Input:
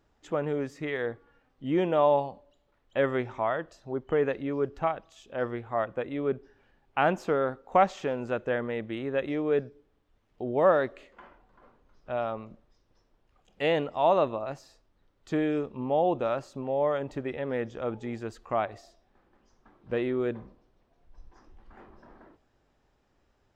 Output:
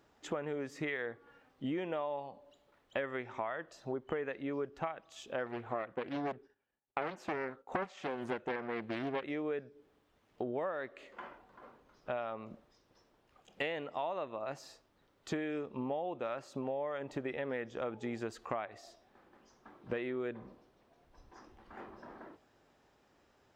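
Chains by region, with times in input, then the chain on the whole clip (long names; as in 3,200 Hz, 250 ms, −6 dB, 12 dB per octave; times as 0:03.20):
0:05.46–0:09.24: downward expander −50 dBFS + highs frequency-modulated by the lows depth 0.98 ms
whole clip: high-pass filter 200 Hz 6 dB per octave; dynamic equaliser 2,000 Hz, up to +6 dB, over −44 dBFS, Q 1.3; downward compressor 12 to 1, threshold −38 dBFS; level +4 dB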